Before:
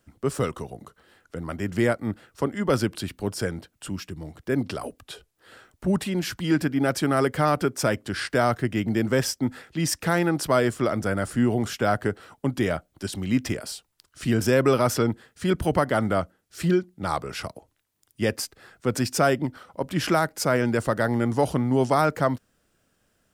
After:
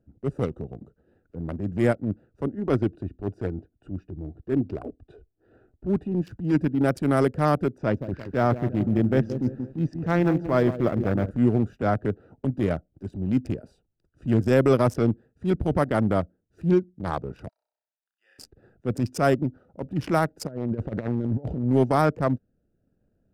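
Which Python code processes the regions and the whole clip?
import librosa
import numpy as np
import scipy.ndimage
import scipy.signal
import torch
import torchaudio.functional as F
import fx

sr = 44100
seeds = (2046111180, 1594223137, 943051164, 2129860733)

y = fx.chain(x, sr, fx.high_shelf(hz=5900.0, db=-11.5),
    fx.comb(ms=2.8, depth=0.37), at=(2.55, 6.12))
y = fx.chain(y, sr, fx.air_absorb(metres=140.0),
    fx.echo_crushed(ms=173, feedback_pct=55, bits=7, wet_db=-9.0), at=(7.78, 11.31))
y = fx.chain(y, sr, fx.high_shelf(hz=5400.0, db=-7.5),
    fx.band_squash(depth_pct=70), at=(11.82, 12.45))
y = fx.chain(y, sr, fx.highpass(hz=1300.0, slope=24),
    fx.level_steps(step_db=14),
    fx.room_flutter(wall_m=5.4, rt60_s=0.87), at=(17.49, 18.39))
y = fx.chain(y, sr, fx.lowpass(hz=3500.0, slope=12),
    fx.over_compress(threshold_db=-27.0, ratio=-0.5), at=(20.47, 21.65))
y = fx.wiener(y, sr, points=41)
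y = fx.tilt_shelf(y, sr, db=3.5, hz=680.0)
y = fx.transient(y, sr, attack_db=-8, sustain_db=-4)
y = y * 10.0 ** (1.5 / 20.0)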